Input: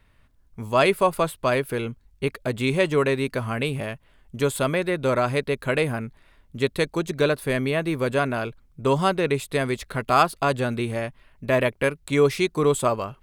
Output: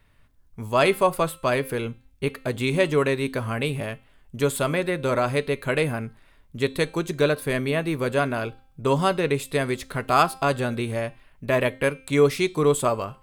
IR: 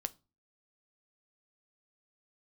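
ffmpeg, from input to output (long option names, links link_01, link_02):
-filter_complex "[0:a]bandreject=frequency=263.5:width_type=h:width=4,bandreject=frequency=527:width_type=h:width=4,bandreject=frequency=790.5:width_type=h:width=4,bandreject=frequency=1054:width_type=h:width=4,bandreject=frequency=1317.5:width_type=h:width=4,bandreject=frequency=1581:width_type=h:width=4,bandreject=frequency=1844.5:width_type=h:width=4,bandreject=frequency=2108:width_type=h:width=4,bandreject=frequency=2371.5:width_type=h:width=4,bandreject=frequency=2635:width_type=h:width=4,bandreject=frequency=2898.5:width_type=h:width=4,bandreject=frequency=3162:width_type=h:width=4,bandreject=frequency=3425.5:width_type=h:width=4,bandreject=frequency=3689:width_type=h:width=4,bandreject=frequency=3952.5:width_type=h:width=4,bandreject=frequency=4216:width_type=h:width=4,bandreject=frequency=4479.5:width_type=h:width=4,bandreject=frequency=4743:width_type=h:width=4,bandreject=frequency=5006.5:width_type=h:width=4,bandreject=frequency=5270:width_type=h:width=4,bandreject=frequency=5533.5:width_type=h:width=4,bandreject=frequency=5797:width_type=h:width=4,bandreject=frequency=6060.5:width_type=h:width=4,bandreject=frequency=6324:width_type=h:width=4,bandreject=frequency=6587.5:width_type=h:width=4,bandreject=frequency=6851:width_type=h:width=4,bandreject=frequency=7114.5:width_type=h:width=4,bandreject=frequency=7378:width_type=h:width=4,bandreject=frequency=7641.5:width_type=h:width=4,bandreject=frequency=7905:width_type=h:width=4,bandreject=frequency=8168.5:width_type=h:width=4,bandreject=frequency=8432:width_type=h:width=4,bandreject=frequency=8695.5:width_type=h:width=4,bandreject=frequency=8959:width_type=h:width=4,bandreject=frequency=9222.5:width_type=h:width=4,bandreject=frequency=9486:width_type=h:width=4,asplit=2[link_01][link_02];[1:a]atrim=start_sample=2205,afade=type=out:start_time=0.16:duration=0.01,atrim=end_sample=7497,highshelf=frequency=8600:gain=6[link_03];[link_02][link_03]afir=irnorm=-1:irlink=0,volume=2dB[link_04];[link_01][link_04]amix=inputs=2:normalize=0,volume=-7dB"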